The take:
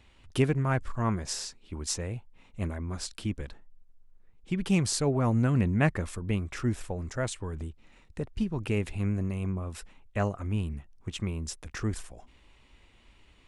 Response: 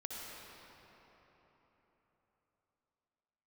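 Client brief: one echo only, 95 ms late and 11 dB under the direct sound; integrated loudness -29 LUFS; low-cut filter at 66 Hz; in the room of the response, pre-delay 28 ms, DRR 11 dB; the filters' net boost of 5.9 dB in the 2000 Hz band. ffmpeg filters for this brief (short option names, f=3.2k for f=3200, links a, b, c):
-filter_complex "[0:a]highpass=66,equalizer=f=2k:t=o:g=7.5,aecho=1:1:95:0.282,asplit=2[a][b];[1:a]atrim=start_sample=2205,adelay=28[c];[b][c]afir=irnorm=-1:irlink=0,volume=-11dB[d];[a][d]amix=inputs=2:normalize=0,volume=1dB"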